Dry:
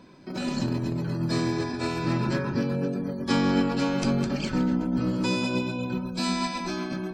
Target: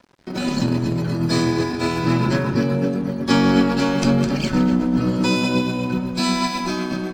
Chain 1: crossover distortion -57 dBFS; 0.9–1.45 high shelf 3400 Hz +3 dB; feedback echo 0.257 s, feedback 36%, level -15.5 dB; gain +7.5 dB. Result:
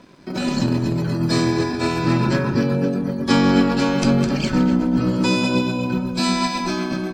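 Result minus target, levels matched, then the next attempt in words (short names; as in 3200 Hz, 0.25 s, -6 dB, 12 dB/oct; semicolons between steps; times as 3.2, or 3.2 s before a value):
crossover distortion: distortion -9 dB
crossover distortion -48 dBFS; 0.9–1.45 high shelf 3400 Hz +3 dB; feedback echo 0.257 s, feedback 36%, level -15.5 dB; gain +7.5 dB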